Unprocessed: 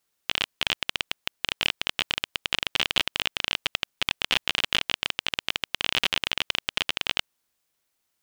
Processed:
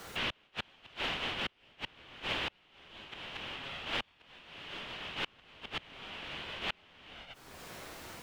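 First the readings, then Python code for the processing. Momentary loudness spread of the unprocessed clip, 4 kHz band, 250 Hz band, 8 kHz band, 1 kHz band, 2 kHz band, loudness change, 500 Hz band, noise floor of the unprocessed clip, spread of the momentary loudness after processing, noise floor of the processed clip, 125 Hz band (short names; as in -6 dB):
5 LU, -14.5 dB, -5.5 dB, -17.0 dB, -7.5 dB, -11.5 dB, -13.0 dB, -6.0 dB, -77 dBFS, 15 LU, -67 dBFS, -5.5 dB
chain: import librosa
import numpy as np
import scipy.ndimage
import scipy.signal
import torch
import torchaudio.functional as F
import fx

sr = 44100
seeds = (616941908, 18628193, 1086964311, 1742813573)

y = fx.phase_scramble(x, sr, seeds[0], window_ms=200)
y = fx.lowpass(y, sr, hz=1200.0, slope=6)
y = fx.gate_flip(y, sr, shuts_db=-28.0, range_db=-38)
y = fx.band_squash(y, sr, depth_pct=100)
y = F.gain(torch.from_numpy(y), 10.0).numpy()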